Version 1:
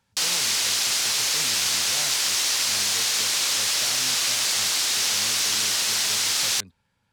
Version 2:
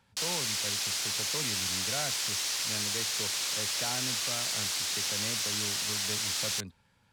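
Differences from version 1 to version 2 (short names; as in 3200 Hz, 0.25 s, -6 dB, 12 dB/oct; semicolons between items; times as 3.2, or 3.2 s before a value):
speech +4.0 dB; background -9.0 dB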